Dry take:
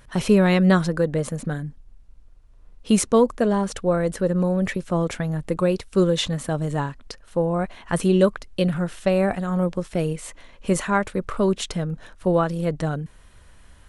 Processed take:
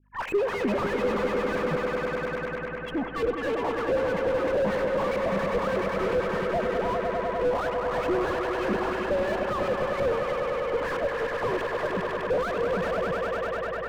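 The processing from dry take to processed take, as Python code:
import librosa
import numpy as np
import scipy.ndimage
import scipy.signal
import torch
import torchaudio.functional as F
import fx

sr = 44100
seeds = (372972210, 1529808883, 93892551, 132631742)

p1 = fx.sine_speech(x, sr)
p2 = fx.peak_eq(p1, sr, hz=350.0, db=-11.0, octaves=1.7)
p3 = fx.dispersion(p2, sr, late='lows', ms=50.0, hz=1800.0)
p4 = fx.fold_sine(p3, sr, drive_db=11, ceiling_db=-8.5)
p5 = fx.dynamic_eq(p4, sr, hz=970.0, q=2.3, threshold_db=-30.0, ratio=4.0, max_db=4)
p6 = fx.tube_stage(p5, sr, drive_db=19.0, bias=0.4)
p7 = fx.add_hum(p6, sr, base_hz=50, snr_db=32)
p8 = fx.filter_lfo_lowpass(p7, sr, shape='saw_up', hz=3.1, low_hz=370.0, high_hz=2800.0, q=3.1)
p9 = p8 + fx.echo_swell(p8, sr, ms=100, loudest=5, wet_db=-9, dry=0)
p10 = fx.slew_limit(p9, sr, full_power_hz=110.0)
y = p10 * 10.0 ** (-8.0 / 20.0)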